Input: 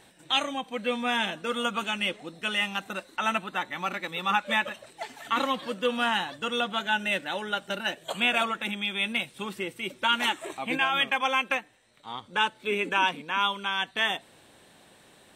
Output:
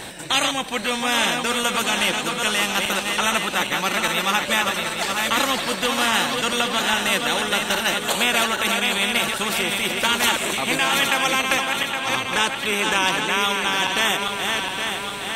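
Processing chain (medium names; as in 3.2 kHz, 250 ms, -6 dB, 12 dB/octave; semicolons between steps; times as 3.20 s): backward echo that repeats 408 ms, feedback 60%, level -7 dB; spectrum-flattening compressor 2:1; trim +6.5 dB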